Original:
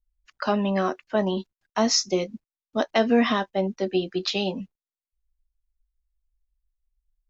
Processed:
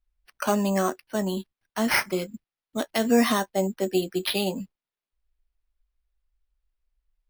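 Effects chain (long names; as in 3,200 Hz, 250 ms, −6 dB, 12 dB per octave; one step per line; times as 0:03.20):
0:00.90–0:03.05: parametric band 780 Hz −6.5 dB 2.2 octaves
bad sample-rate conversion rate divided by 6×, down none, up hold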